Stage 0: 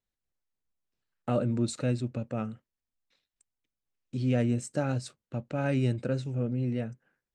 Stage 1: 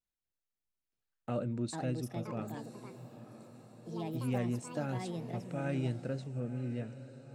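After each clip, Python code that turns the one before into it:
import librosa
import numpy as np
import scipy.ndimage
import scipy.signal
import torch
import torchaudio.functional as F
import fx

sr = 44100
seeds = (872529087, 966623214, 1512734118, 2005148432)

y = fx.vibrato(x, sr, rate_hz=0.69, depth_cents=29.0)
y = fx.echo_diffused(y, sr, ms=991, feedback_pct=54, wet_db=-14)
y = fx.echo_pitch(y, sr, ms=767, semitones=5, count=2, db_per_echo=-6.0)
y = F.gain(torch.from_numpy(y), -7.5).numpy()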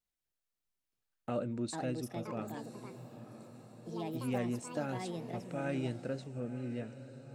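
y = fx.dynamic_eq(x, sr, hz=130.0, q=1.3, threshold_db=-49.0, ratio=4.0, max_db=-6)
y = F.gain(torch.from_numpy(y), 1.0).numpy()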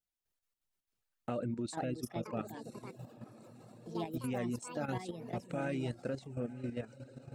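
y = fx.dereverb_blind(x, sr, rt60_s=0.58)
y = fx.level_steps(y, sr, step_db=10)
y = F.gain(torch.from_numpy(y), 4.5).numpy()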